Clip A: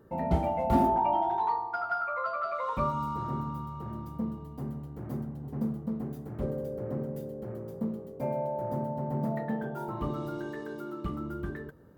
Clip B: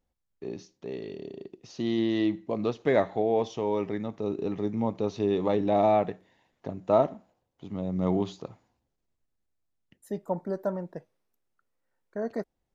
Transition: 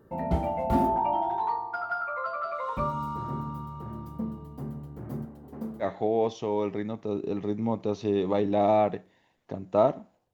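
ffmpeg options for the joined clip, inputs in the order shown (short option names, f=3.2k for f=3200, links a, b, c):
-filter_complex "[0:a]asettb=1/sr,asplit=3[a][b][c];[a]atrim=end=5.264[d];[b]atrim=start=5.26:end=5.89,asetpts=PTS-STARTPTS,afade=t=in:d=0.004:c=qsin,afade=t=out:st=0.626:d=0.004:c=qsin,equalizer=f=130:w=1.5:g=-15[e];[c]atrim=start=5.886[f];[d][e]acrossfade=d=0.004:c1=hsin:c2=qsin[g];[g][f]acrossfade=d=0.004:c1=qsin:c2=hsin,apad=whole_dur=10.33,atrim=end=10.33,atrim=end=5.89,asetpts=PTS-STARTPTS[h];[1:a]atrim=start=2.94:end=7.48,asetpts=PTS-STARTPTS[i];[h][i]acrossfade=d=0.1:c1=tri:c2=tri"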